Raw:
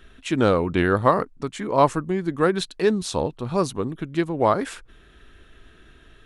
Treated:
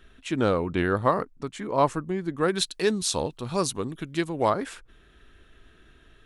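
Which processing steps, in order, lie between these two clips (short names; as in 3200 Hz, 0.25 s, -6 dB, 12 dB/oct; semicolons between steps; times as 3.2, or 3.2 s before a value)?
2.48–4.5 high shelf 2800 Hz +11.5 dB; gain -4.5 dB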